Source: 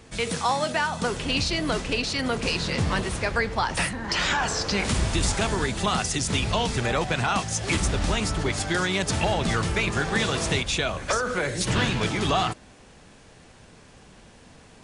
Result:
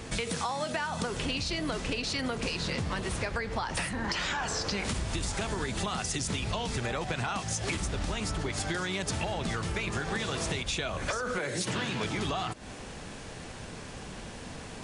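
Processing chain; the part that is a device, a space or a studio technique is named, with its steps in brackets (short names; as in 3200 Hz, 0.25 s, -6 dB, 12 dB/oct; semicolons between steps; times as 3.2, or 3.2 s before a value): 11.38–12.05 HPF 140 Hz 12 dB/oct; serial compression, peaks first (compressor, threshold -32 dBFS, peak gain reduction 12.5 dB; compressor 2:1, threshold -41 dBFS, peak gain reduction 7 dB); gain +8 dB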